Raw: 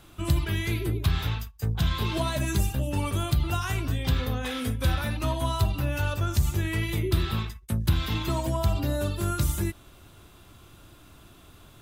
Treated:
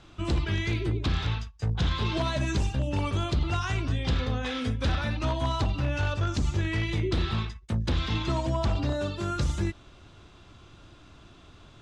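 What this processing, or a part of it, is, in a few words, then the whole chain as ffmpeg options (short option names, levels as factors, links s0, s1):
synthesiser wavefolder: -filter_complex "[0:a]asettb=1/sr,asplit=3[s0][s1][s2];[s0]atrim=end=8.934[s3];[s1]atrim=start=8.93:end=9.36,asetpts=PTS-STARTPTS,afade=t=in:d=0.004:c=qsin,afade=t=out:st=0.426:d=0.004:c=qsin,highpass=f=140:p=1[s4];[s2]atrim=start=9.356[s5];[s3][s4]acrossfade=d=0.004:c1=hsin:c2=qsin[s6];[s6][s5]acrossfade=d=0.004:c1=qsin:c2=hsin,aeval=exprs='0.112*(abs(mod(val(0)/0.112+3,4)-2)-1)':c=same,lowpass=f=6400:w=0.5412,lowpass=f=6400:w=1.3066"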